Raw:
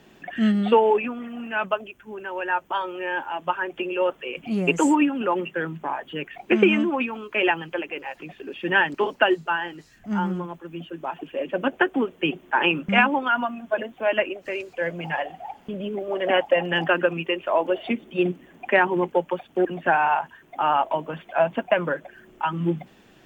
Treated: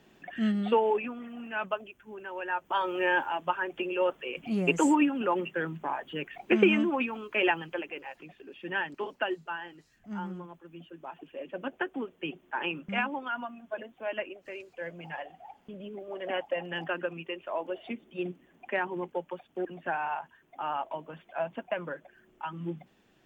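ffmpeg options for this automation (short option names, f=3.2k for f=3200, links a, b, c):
-af "volume=2.5dB,afade=t=in:st=2.61:d=0.43:silence=0.316228,afade=t=out:st=3.04:d=0.4:silence=0.446684,afade=t=out:st=7.45:d=1:silence=0.421697"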